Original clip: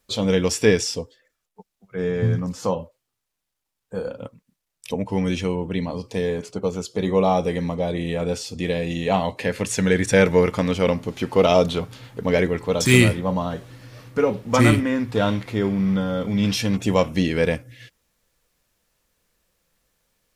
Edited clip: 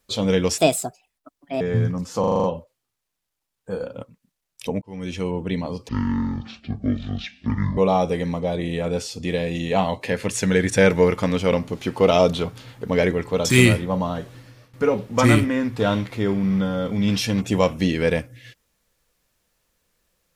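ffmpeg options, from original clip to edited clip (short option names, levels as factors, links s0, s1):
-filter_complex "[0:a]asplit=13[s0][s1][s2][s3][s4][s5][s6][s7][s8][s9][s10][s11][s12];[s0]atrim=end=0.584[s13];[s1]atrim=start=0.58:end=2.09,asetpts=PTS-STARTPTS,asetrate=64827,aresample=44100[s14];[s2]atrim=start=2.086:end=2.722[s15];[s3]atrim=start=2.678:end=2.722[s16];[s4]atrim=start=2.678:end=2.722[s17];[s5]atrim=start=2.678:end=2.722[s18];[s6]atrim=start=2.678:end=2.722[s19];[s7]atrim=start=2.678:end=2.722[s20];[s8]atrim=start=2.678:end=5.06,asetpts=PTS-STARTPTS,afade=t=out:st=2.378:d=0.004:c=hsin[s21];[s9]atrim=start=5.06:end=6.134,asetpts=PTS-STARTPTS,afade=t=in:d=0.53[s22];[s10]atrim=start=6.13:end=7.13,asetpts=PTS-STARTPTS,asetrate=23373,aresample=44100[s23];[s11]atrim=start=7.126:end=14.09,asetpts=PTS-STARTPTS,afade=t=out:st=6.594:d=0.37:silence=0.125893[s24];[s12]atrim=start=14.09,asetpts=PTS-STARTPTS,afade=t=in:d=0.004:c=hsin:silence=0.125893[s25];[s13][s14]acrossfade=d=0.004:c1=hsin:c2=hsin[s26];[s26][s15]acrossfade=d=0.004:c1=hsin:c2=hsin[s27];[s27][s16]acrossfade=d=0.004:c1=hsin:c2=hsin[s28];[s28][s17]acrossfade=d=0.004:c1=hsin:c2=hsin[s29];[s29][s18]acrossfade=d=0.004:c1=hsin:c2=hsin[s30];[s30][s19]acrossfade=d=0.004:c1=hsin:c2=hsin[s31];[s31][s20]acrossfade=d=0.004:c1=hsin:c2=hsin[s32];[s21][s22]concat=n=2:v=0:a=1[s33];[s32][s33]acrossfade=d=0.004:c1=hsin:c2=hsin[s34];[s34][s23]acrossfade=d=0.004:c1=hsin:c2=hsin[s35];[s24][s25]concat=n=2:v=0:a=1[s36];[s35][s36]acrossfade=d=0.004:c1=hsin:c2=hsin"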